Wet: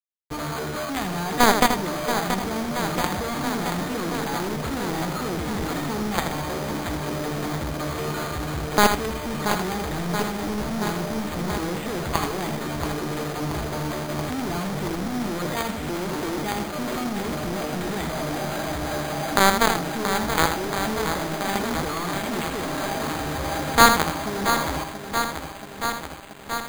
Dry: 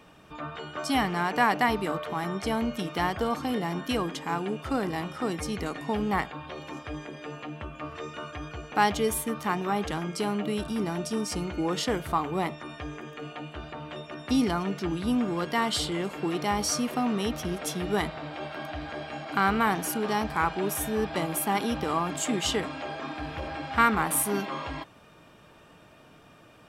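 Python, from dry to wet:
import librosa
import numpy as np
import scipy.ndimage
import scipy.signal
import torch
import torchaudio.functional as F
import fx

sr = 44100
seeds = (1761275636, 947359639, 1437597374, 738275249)

p1 = fx.halfwave_hold(x, sr)
p2 = scipy.signal.sosfilt(scipy.signal.butter(6, 8000.0, 'lowpass', fs=sr, output='sos'), p1)
p3 = 10.0 ** (-15.5 / 20.0) * np.tanh(p2 / 10.0 ** (-15.5 / 20.0))
p4 = p2 + (p3 * librosa.db_to_amplitude(-11.0))
p5 = fx.quant_companded(p4, sr, bits=2)
p6 = p5 + fx.echo_single(p5, sr, ms=81, db=-7.5, dry=0)
p7 = np.repeat(scipy.signal.resample_poly(p6, 1, 8), 8)[:len(p6)]
p8 = fx.echo_crushed(p7, sr, ms=679, feedback_pct=80, bits=6, wet_db=-8.5)
y = p8 * librosa.db_to_amplitude(-3.5)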